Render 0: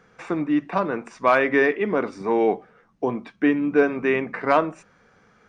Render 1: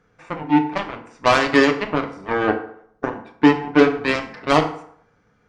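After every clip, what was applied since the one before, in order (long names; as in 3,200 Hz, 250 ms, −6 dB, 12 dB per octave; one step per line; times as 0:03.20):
low-shelf EQ 190 Hz +10 dB
harmonic generator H 7 −14 dB, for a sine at −4 dBFS
feedback delay network reverb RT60 0.65 s, low-frequency decay 0.85×, high-frequency decay 0.65×, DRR 4 dB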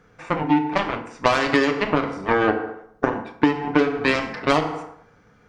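downward compressor 10 to 1, threshold −20 dBFS, peak gain reduction 13.5 dB
level +6 dB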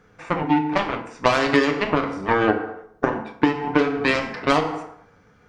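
flanger 0.41 Hz, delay 9.1 ms, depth 7 ms, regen +69%
level +4.5 dB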